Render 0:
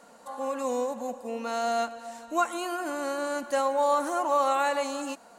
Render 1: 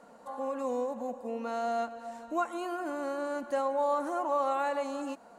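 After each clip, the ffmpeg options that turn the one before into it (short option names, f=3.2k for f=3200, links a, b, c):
-filter_complex "[0:a]highshelf=f=2k:g=-11.5,asplit=2[a][b];[b]acompressor=threshold=-36dB:ratio=6,volume=-2dB[c];[a][c]amix=inputs=2:normalize=0,volume=-4.5dB"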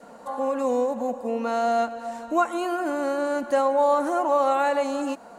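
-af "adynamicequalizer=threshold=0.00447:dfrequency=1100:dqfactor=3.7:tfrequency=1100:tqfactor=3.7:attack=5:release=100:ratio=0.375:range=2:mode=cutabove:tftype=bell,volume=9dB"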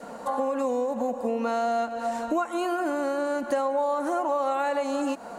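-af "acompressor=threshold=-30dB:ratio=5,volume=6dB"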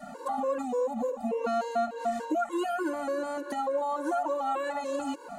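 -af "afftfilt=real='re*gt(sin(2*PI*3.4*pts/sr)*(1-2*mod(floor(b*sr/1024/290),2)),0)':imag='im*gt(sin(2*PI*3.4*pts/sr)*(1-2*mod(floor(b*sr/1024/290),2)),0)':win_size=1024:overlap=0.75"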